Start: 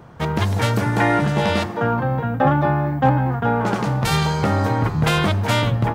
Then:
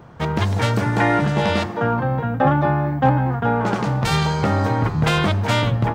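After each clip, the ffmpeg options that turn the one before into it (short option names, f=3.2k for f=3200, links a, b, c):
-af "equalizer=f=12k:w=1.3:g=-9"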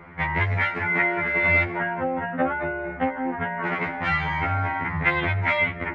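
-af "acompressor=threshold=-20dB:ratio=6,lowpass=f=2.1k:t=q:w=8.6,afftfilt=real='re*2*eq(mod(b,4),0)':imag='im*2*eq(mod(b,4),0)':win_size=2048:overlap=0.75"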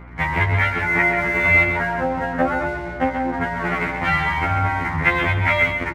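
-filter_complex "[0:a]asplit=2[a][b];[b]aeval=exprs='sgn(val(0))*max(abs(val(0))-0.0119,0)':c=same,volume=-4.5dB[c];[a][c]amix=inputs=2:normalize=0,aeval=exprs='val(0)+0.0112*(sin(2*PI*60*n/s)+sin(2*PI*2*60*n/s)/2+sin(2*PI*3*60*n/s)/3+sin(2*PI*4*60*n/s)/4+sin(2*PI*5*60*n/s)/5)':c=same,aecho=1:1:133:0.447"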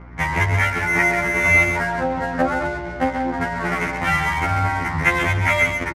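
-af "adynamicsmooth=sensitivity=7:basefreq=1.9k,aresample=32000,aresample=44100"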